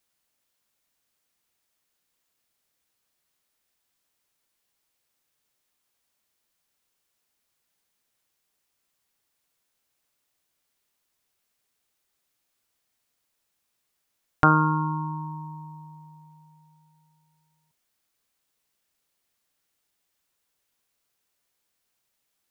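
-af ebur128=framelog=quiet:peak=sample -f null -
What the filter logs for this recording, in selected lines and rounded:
Integrated loudness:
  I:         -23.8 LUFS
  Threshold: -38.2 LUFS
Loudness range:
  LRA:        16.7 LU
  Threshold: -50.3 LUFS
  LRA low:   -44.5 LUFS
  LRA high:  -27.8 LUFS
Sample peak:
  Peak:       -3.4 dBFS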